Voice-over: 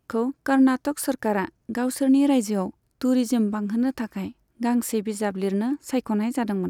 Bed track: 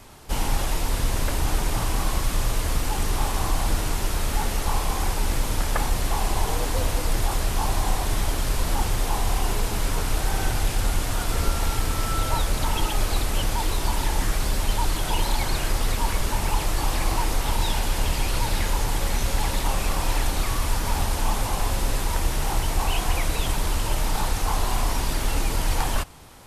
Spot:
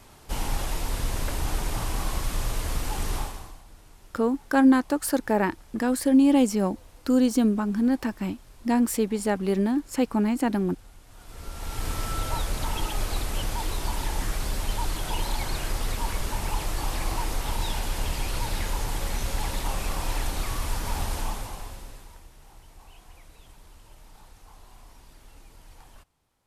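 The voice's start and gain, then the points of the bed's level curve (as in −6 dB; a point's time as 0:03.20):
4.05 s, +0.5 dB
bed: 0:03.17 −4.5 dB
0:03.64 −27 dB
0:11.04 −27 dB
0:11.87 −5 dB
0:21.18 −5 dB
0:22.30 −27 dB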